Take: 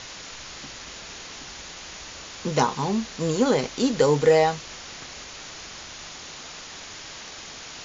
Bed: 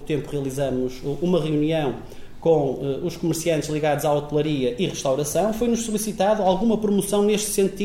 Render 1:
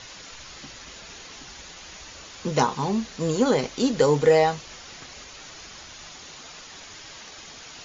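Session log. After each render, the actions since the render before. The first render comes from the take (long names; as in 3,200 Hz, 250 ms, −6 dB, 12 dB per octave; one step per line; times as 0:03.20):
broadband denoise 6 dB, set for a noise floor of −41 dBFS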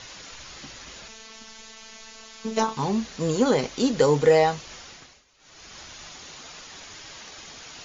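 0:01.08–0:02.77: phases set to zero 222 Hz
0:04.80–0:05.80: duck −19.5 dB, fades 0.42 s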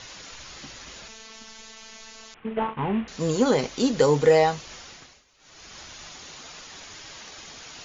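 0:02.34–0:03.08: variable-slope delta modulation 16 kbit/s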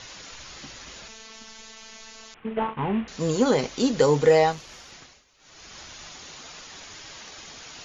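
0:04.52–0:04.92: tube saturation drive 29 dB, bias 0.55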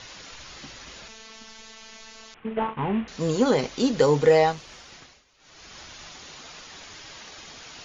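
low-pass filter 6,700 Hz 12 dB per octave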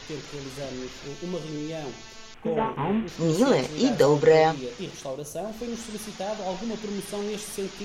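mix in bed −12 dB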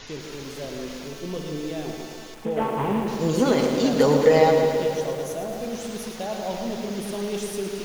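tape delay 148 ms, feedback 69%, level −5 dB, low-pass 1,100 Hz
feedback echo at a low word length 110 ms, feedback 80%, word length 7 bits, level −8 dB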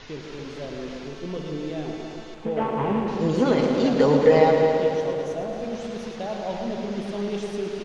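high-frequency loss of the air 130 metres
slap from a distant wall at 49 metres, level −9 dB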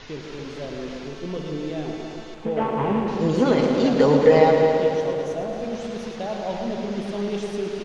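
level +1.5 dB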